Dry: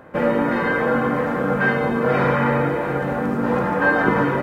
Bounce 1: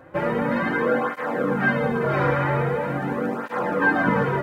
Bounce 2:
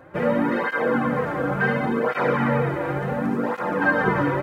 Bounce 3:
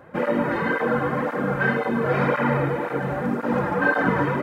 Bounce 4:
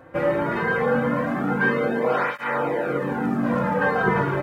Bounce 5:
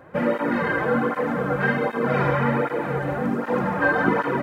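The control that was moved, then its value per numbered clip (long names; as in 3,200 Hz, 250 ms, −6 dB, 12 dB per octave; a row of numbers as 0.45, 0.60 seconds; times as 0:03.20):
through-zero flanger with one copy inverted, nulls at: 0.43, 0.7, 1.9, 0.21, 1.3 Hertz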